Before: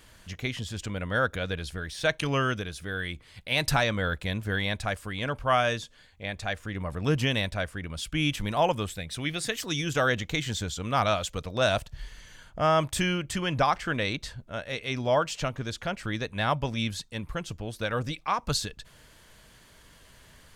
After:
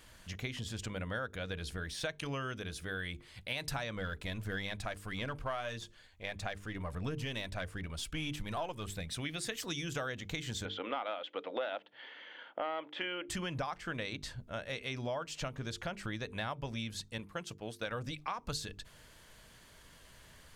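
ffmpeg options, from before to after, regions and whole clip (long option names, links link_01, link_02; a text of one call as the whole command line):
ffmpeg -i in.wav -filter_complex "[0:a]asettb=1/sr,asplit=3[link_01][link_02][link_03];[link_01]atrim=end=3.964[link_04];[link_02]atrim=start=3.96:end=9.09,asetpts=PTS-STARTPTS,afade=type=in:duration=0.004:curve=qsin,afade=type=out:start_time=5.126:duration=0.004:curve=qsin,aeval=exprs='if(lt(val(0),0),0.708*val(0),val(0))':channel_layout=same,aphaser=in_gain=1:out_gain=1:delay=3.2:decay=0.29:speed=1.6:type=sinusoidal[link_05];[link_03]atrim=start=9.086[link_06];[link_04][link_05]acrossfade=duration=0.004:curve1=hsin:curve2=qsin[link_07];[link_07][link_06]acrossfade=duration=0.004:curve1=qsin:curve2=hsin,asettb=1/sr,asplit=3[link_08][link_09][link_10];[link_08]atrim=end=10.654[link_11];[link_09]atrim=start=10.65:end=13.29,asetpts=PTS-STARTPTS,afade=type=in:duration=0.004:curve=qsin,afade=type=out:start_time=2.636:duration=0.004:curve=qsin,aeval=exprs='clip(val(0),-1,0.0891)':channel_layout=same,highpass=frequency=290:width=0.5412,highpass=frequency=290:width=1.3066,equalizer=frequency=290:width_type=q:width=4:gain=8,equalizer=frequency=520:width_type=q:width=4:gain=8,equalizer=frequency=830:width_type=q:width=4:gain=8,equalizer=frequency=1400:width_type=q:width=4:gain=5,equalizer=frequency=2000:width_type=q:width=4:gain=6,equalizer=frequency=3200:width_type=q:width=4:gain=8,lowpass=frequency=3300:width=0.5412,lowpass=frequency=3300:width=1.3066[link_12];[link_10]atrim=start=13.286[link_13];[link_11][link_12]acrossfade=duration=0.004:curve1=hsin:curve2=qsin[link_14];[link_14][link_13]acrossfade=duration=0.004:curve1=qsin:curve2=hsin,asettb=1/sr,asplit=3[link_15][link_16][link_17];[link_15]atrim=end=17.184[link_18];[link_16]atrim=start=17.18:end=17.87,asetpts=PTS-STARTPTS,afade=type=in:duration=0.004:curve=qsin,afade=type=out:start_time=0.686:duration=0.004:curve=qsin,highpass=frequency=230:poles=1,agate=range=-8dB:threshold=-43dB:ratio=16:release=100:detection=peak[link_19];[link_17]atrim=start=17.866[link_20];[link_18][link_19]acrossfade=duration=0.004:curve1=hsin:curve2=qsin[link_21];[link_21][link_20]acrossfade=duration=0.004:curve1=qsin:curve2=hsin,bandreject=frequency=50:width_type=h:width=6,bandreject=frequency=100:width_type=h:width=6,bandreject=frequency=150:width_type=h:width=6,bandreject=frequency=200:width_type=h:width=6,bandreject=frequency=250:width_type=h:width=6,bandreject=frequency=300:width_type=h:width=6,bandreject=frequency=350:width_type=h:width=6,bandreject=frequency=400:width_type=h:width=6,bandreject=frequency=450:width_type=h:width=6,acompressor=threshold=-32dB:ratio=6,volume=-3dB" out.wav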